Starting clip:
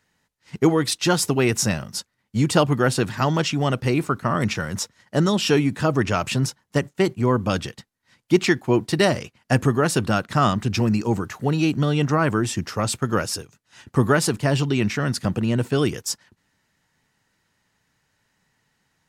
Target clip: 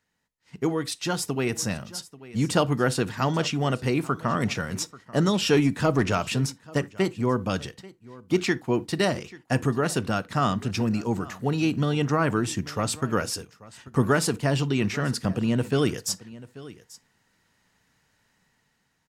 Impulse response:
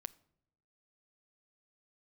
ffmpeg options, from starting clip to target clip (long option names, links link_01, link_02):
-filter_complex "[0:a]aecho=1:1:837:0.0944,dynaudnorm=framelen=290:gausssize=13:maxgain=16dB,asettb=1/sr,asplit=3[link_01][link_02][link_03];[link_01]atrim=end=5.534[link_04];[link_02]atrim=start=5.53:end=6.15,asetpts=PTS-STARTPTS,afade=type=in:duration=0.004:curve=qsin,afade=type=out:start_time=0.616:duration=0.004:curve=qsin,aeval=exprs='0.841*(cos(1*acos(clip(val(0)/0.841,-1,1)))-cos(1*PI/2))+0.0841*(cos(5*acos(clip(val(0)/0.841,-1,1)))-cos(5*PI/2))+0.0376*(cos(7*acos(clip(val(0)/0.841,-1,1)))-cos(7*PI/2))':channel_layout=same[link_05];[link_03]atrim=start=6.146[link_06];[link_04][link_05]acrossfade=duration=0.004:curve1=hsin:curve2=qsin[link_07];[link_07][link_06]acrossfade=duration=0.004:curve1=qsin:curve2=hsin[link_08];[1:a]atrim=start_sample=2205,atrim=end_sample=6174,asetrate=70560,aresample=44100[link_09];[link_08][link_09]afir=irnorm=-1:irlink=0"